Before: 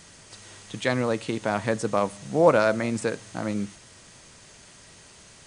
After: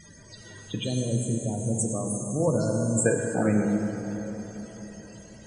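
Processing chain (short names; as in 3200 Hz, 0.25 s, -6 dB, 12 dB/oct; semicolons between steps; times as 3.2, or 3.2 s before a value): 0.84–3.06 EQ curve 100 Hz 0 dB, 1900 Hz -23 dB, 7100 Hz +11 dB; loudest bins only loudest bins 32; plate-style reverb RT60 4.2 s, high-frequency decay 0.45×, pre-delay 0 ms, DRR 1.5 dB; gain +4 dB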